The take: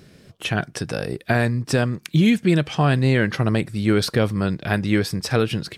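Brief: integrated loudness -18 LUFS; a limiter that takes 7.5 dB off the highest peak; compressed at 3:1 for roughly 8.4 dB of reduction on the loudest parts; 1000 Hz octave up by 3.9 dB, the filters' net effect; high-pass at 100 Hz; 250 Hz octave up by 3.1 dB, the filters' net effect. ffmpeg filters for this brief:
-af "highpass=100,equalizer=f=250:t=o:g=4,equalizer=f=1k:t=o:g=5.5,acompressor=threshold=-22dB:ratio=3,volume=9dB,alimiter=limit=-5.5dB:level=0:latency=1"

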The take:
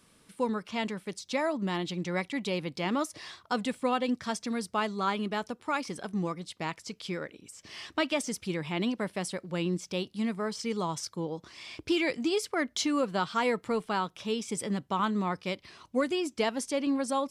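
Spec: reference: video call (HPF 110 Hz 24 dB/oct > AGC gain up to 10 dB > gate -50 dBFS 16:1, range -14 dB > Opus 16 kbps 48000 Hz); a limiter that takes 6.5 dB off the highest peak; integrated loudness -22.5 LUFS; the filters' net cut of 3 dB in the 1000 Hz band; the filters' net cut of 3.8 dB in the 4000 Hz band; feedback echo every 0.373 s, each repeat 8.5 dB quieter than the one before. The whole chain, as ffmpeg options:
-af "equalizer=f=1k:t=o:g=-3.5,equalizer=f=4k:t=o:g=-5,alimiter=level_in=0.5dB:limit=-24dB:level=0:latency=1,volume=-0.5dB,highpass=f=110:w=0.5412,highpass=f=110:w=1.3066,aecho=1:1:373|746|1119|1492:0.376|0.143|0.0543|0.0206,dynaudnorm=m=10dB,agate=range=-14dB:threshold=-50dB:ratio=16,volume=8.5dB" -ar 48000 -c:a libopus -b:a 16k

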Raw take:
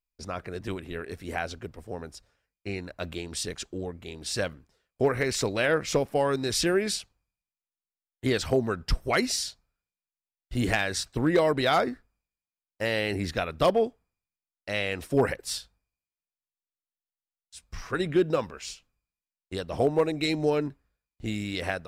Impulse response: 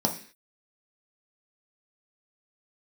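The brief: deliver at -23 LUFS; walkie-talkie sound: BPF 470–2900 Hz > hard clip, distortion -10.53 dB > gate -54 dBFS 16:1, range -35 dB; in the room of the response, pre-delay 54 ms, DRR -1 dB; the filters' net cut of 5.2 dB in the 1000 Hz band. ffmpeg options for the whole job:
-filter_complex "[0:a]equalizer=f=1k:t=o:g=-7,asplit=2[a][b];[1:a]atrim=start_sample=2205,adelay=54[c];[b][c]afir=irnorm=-1:irlink=0,volume=-9dB[d];[a][d]amix=inputs=2:normalize=0,highpass=470,lowpass=2.9k,asoftclip=type=hard:threshold=-22.5dB,agate=range=-35dB:threshold=-54dB:ratio=16,volume=8dB"

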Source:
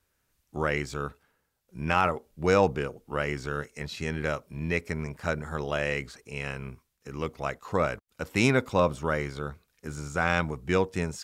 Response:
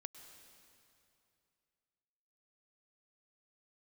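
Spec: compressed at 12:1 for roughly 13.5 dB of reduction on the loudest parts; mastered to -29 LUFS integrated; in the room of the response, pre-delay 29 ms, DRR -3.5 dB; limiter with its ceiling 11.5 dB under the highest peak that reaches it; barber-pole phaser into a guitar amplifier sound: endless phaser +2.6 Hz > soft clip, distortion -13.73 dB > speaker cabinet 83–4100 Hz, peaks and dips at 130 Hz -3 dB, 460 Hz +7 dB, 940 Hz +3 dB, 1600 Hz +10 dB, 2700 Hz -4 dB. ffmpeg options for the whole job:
-filter_complex "[0:a]acompressor=threshold=-31dB:ratio=12,alimiter=level_in=5.5dB:limit=-24dB:level=0:latency=1,volume=-5.5dB,asplit=2[a][b];[1:a]atrim=start_sample=2205,adelay=29[c];[b][c]afir=irnorm=-1:irlink=0,volume=8.5dB[d];[a][d]amix=inputs=2:normalize=0,asplit=2[e][f];[f]afreqshift=2.6[g];[e][g]amix=inputs=2:normalize=1,asoftclip=threshold=-35dB,highpass=83,equalizer=f=130:t=q:w=4:g=-3,equalizer=f=460:t=q:w=4:g=7,equalizer=f=940:t=q:w=4:g=3,equalizer=f=1.6k:t=q:w=4:g=10,equalizer=f=2.7k:t=q:w=4:g=-4,lowpass=f=4.1k:w=0.5412,lowpass=f=4.1k:w=1.3066,volume=12dB"

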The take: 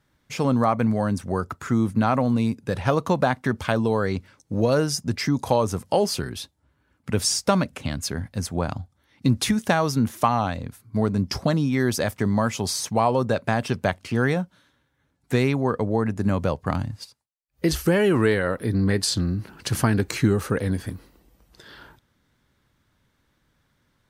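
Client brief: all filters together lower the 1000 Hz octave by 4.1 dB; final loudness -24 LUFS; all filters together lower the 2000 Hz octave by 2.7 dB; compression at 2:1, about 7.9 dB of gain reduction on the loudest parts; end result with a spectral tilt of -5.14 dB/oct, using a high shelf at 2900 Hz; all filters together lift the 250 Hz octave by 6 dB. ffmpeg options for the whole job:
-af "equalizer=f=250:t=o:g=7.5,equalizer=f=1k:t=o:g=-6,equalizer=f=2k:t=o:g=-3.5,highshelf=f=2.9k:g=6,acompressor=threshold=-26dB:ratio=2,volume=2.5dB"

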